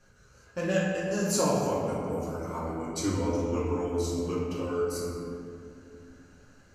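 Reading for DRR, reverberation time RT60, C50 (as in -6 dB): -7.5 dB, 2.5 s, -1.0 dB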